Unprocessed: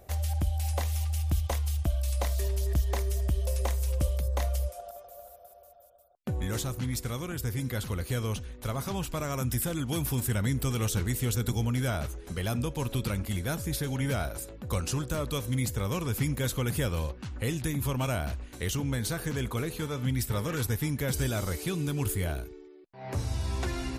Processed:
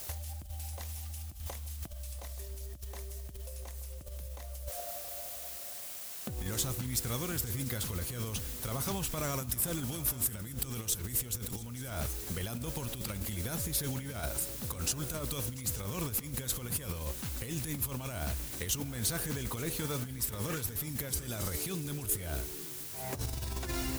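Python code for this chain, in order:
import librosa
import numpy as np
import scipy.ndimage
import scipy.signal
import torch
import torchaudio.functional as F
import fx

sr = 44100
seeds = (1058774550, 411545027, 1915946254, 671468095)

p1 = fx.quant_dither(x, sr, seeds[0], bits=8, dither='triangular')
p2 = fx.over_compress(p1, sr, threshold_db=-32.0, ratio=-0.5)
p3 = fx.high_shelf(p2, sr, hz=5200.0, db=8.0)
p4 = p3 + fx.echo_multitap(p3, sr, ms=(690, 879), db=(-19.5, -18.0), dry=0)
y = p4 * 10.0 ** (-5.0 / 20.0)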